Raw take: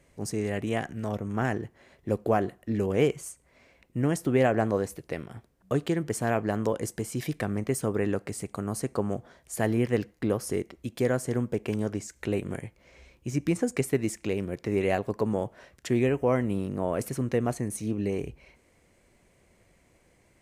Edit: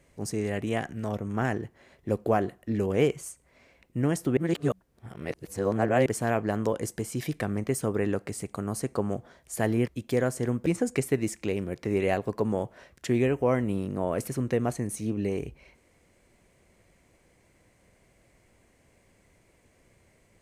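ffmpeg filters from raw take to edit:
ffmpeg -i in.wav -filter_complex "[0:a]asplit=5[link_01][link_02][link_03][link_04][link_05];[link_01]atrim=end=4.372[link_06];[link_02]atrim=start=4.368:end=6.062,asetpts=PTS-STARTPTS,areverse[link_07];[link_03]atrim=start=6.058:end=9.882[link_08];[link_04]atrim=start=10.758:end=11.542[link_09];[link_05]atrim=start=13.468[link_10];[link_06][link_07]acrossfade=duration=0.004:curve1=hsin:curve2=hsin[link_11];[link_11][link_08]acrossfade=duration=0.004:curve1=hsin:curve2=hsin[link_12];[link_12][link_09]acrossfade=duration=0.004:curve1=hsin:curve2=hsin[link_13];[link_13][link_10]acrossfade=duration=0.004:curve1=hsin:curve2=hsin" out.wav

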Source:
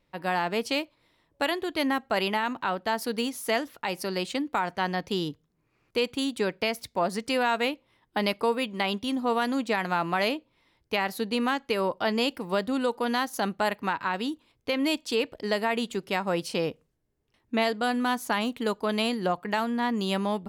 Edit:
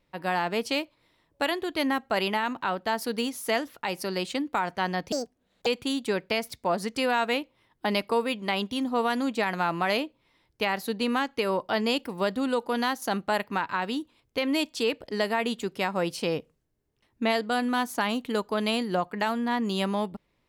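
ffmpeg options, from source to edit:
ffmpeg -i in.wav -filter_complex "[0:a]asplit=3[link_01][link_02][link_03];[link_01]atrim=end=5.124[link_04];[link_02]atrim=start=5.12:end=5.98,asetpts=PTS-STARTPTS,asetrate=69678,aresample=44100[link_05];[link_03]atrim=start=5.976[link_06];[link_04][link_05]acrossfade=duration=0.004:curve1=hsin:curve2=hsin[link_07];[link_07][link_06]acrossfade=duration=0.004:curve1=hsin:curve2=hsin" out.wav

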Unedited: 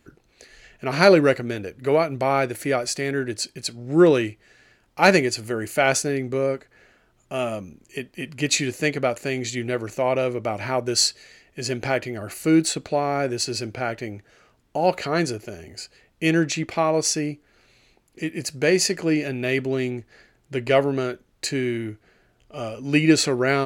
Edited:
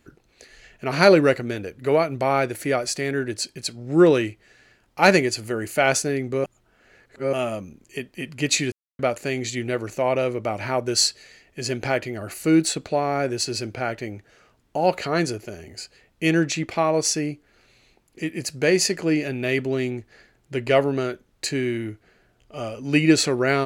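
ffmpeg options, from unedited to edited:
ffmpeg -i in.wav -filter_complex "[0:a]asplit=5[link_01][link_02][link_03][link_04][link_05];[link_01]atrim=end=6.442[link_06];[link_02]atrim=start=6.438:end=7.332,asetpts=PTS-STARTPTS,areverse[link_07];[link_03]atrim=start=7.328:end=8.72,asetpts=PTS-STARTPTS,afade=type=out:start_time=1.388:duration=0.004:curve=hsin[link_08];[link_04]atrim=start=8.72:end=8.99,asetpts=PTS-STARTPTS,volume=0[link_09];[link_05]atrim=start=8.99,asetpts=PTS-STARTPTS,afade=type=in:duration=0.004:curve=hsin[link_10];[link_06][link_07]acrossfade=duration=0.004:curve1=hsin:curve2=hsin[link_11];[link_08][link_09][link_10]concat=n=3:v=0:a=1[link_12];[link_11][link_12]acrossfade=duration=0.004:curve1=hsin:curve2=hsin" out.wav

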